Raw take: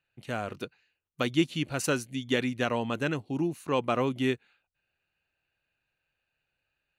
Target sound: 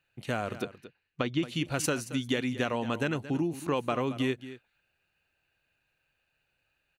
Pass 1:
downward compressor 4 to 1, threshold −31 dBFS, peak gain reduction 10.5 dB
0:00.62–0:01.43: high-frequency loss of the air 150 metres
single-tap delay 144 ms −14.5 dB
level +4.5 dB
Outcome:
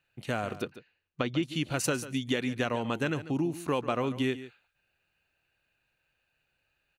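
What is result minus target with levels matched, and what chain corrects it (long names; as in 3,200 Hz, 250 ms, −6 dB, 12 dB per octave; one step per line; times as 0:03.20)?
echo 82 ms early
downward compressor 4 to 1, threshold −31 dBFS, peak gain reduction 10.5 dB
0:00.62–0:01.43: high-frequency loss of the air 150 metres
single-tap delay 226 ms −14.5 dB
level +4.5 dB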